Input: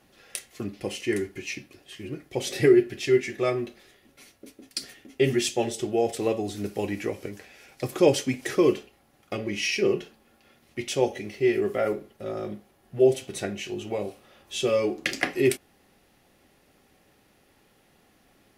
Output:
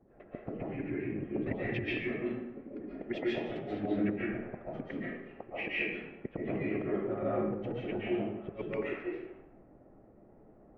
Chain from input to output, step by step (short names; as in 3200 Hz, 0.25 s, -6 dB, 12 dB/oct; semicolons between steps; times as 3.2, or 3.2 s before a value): vibrato 2.8 Hz 15 cents; LPF 2300 Hz 24 dB/oct; low-pass opened by the level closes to 600 Hz, open at -21.5 dBFS; dynamic EQ 290 Hz, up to +6 dB, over -43 dBFS, Q 5.8; compressor 12:1, threshold -27 dBFS, peak gain reduction 16 dB; harmonic-percussive split harmonic -10 dB; flipped gate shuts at -27 dBFS, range -29 dB; time stretch by phase-locked vocoder 0.58×; reverb RT60 0.95 s, pre-delay 0.1 s, DRR -7.5 dB; gain +4 dB